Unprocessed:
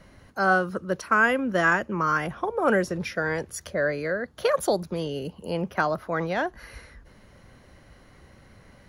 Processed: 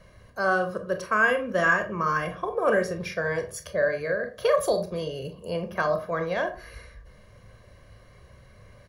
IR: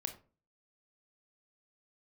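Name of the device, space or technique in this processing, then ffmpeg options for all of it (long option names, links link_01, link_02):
microphone above a desk: -filter_complex "[0:a]aecho=1:1:1.8:0.59[link_01];[1:a]atrim=start_sample=2205[link_02];[link_01][link_02]afir=irnorm=-1:irlink=0,volume=-1.5dB"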